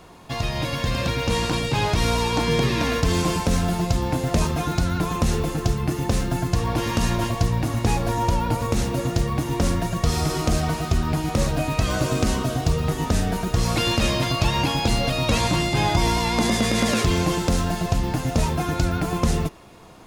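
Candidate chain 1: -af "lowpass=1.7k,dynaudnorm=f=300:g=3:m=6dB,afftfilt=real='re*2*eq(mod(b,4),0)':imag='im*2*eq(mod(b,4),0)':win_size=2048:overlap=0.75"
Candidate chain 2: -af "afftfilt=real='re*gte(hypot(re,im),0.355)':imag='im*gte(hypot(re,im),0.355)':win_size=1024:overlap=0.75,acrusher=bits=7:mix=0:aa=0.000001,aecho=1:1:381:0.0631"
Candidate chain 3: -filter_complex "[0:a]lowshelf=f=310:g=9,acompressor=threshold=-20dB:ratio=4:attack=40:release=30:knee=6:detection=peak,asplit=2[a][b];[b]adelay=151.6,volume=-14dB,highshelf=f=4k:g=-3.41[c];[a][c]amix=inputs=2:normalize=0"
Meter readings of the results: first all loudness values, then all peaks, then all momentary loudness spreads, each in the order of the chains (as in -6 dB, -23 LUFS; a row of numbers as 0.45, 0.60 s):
-20.5, -26.0, -20.0 LUFS; -5.5, -9.5, -4.5 dBFS; 6, 3, 2 LU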